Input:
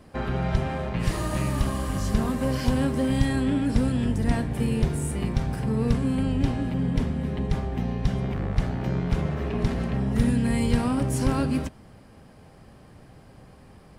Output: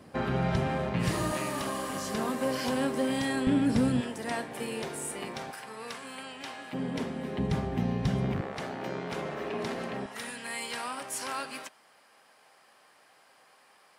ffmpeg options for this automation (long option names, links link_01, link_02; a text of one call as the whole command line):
ffmpeg -i in.wav -af "asetnsamples=nb_out_samples=441:pad=0,asendcmd='1.32 highpass f 330;3.47 highpass f 150;4.01 highpass f 480;5.51 highpass f 990;6.73 highpass f 310;7.38 highpass f 110;8.41 highpass f 380;10.06 highpass f 960',highpass=120" out.wav